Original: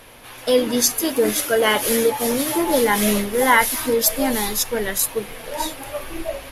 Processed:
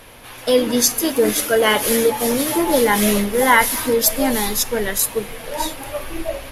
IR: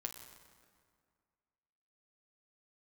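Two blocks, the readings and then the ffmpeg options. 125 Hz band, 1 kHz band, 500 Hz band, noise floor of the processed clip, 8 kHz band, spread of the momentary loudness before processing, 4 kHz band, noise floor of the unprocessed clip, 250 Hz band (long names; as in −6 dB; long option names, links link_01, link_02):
+3.0 dB, +1.5 dB, +2.0 dB, −38 dBFS, +1.5 dB, 13 LU, +1.5 dB, −40 dBFS, +2.0 dB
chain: -filter_complex "[0:a]asplit=2[link_01][link_02];[1:a]atrim=start_sample=2205,lowshelf=frequency=220:gain=9.5[link_03];[link_02][link_03]afir=irnorm=-1:irlink=0,volume=-10.5dB[link_04];[link_01][link_04]amix=inputs=2:normalize=0"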